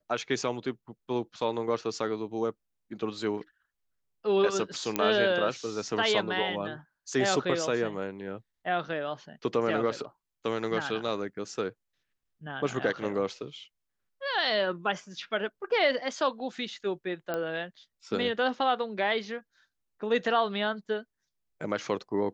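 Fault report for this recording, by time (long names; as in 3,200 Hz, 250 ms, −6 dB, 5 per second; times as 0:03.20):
0:04.96: click −10 dBFS
0:17.34: click −18 dBFS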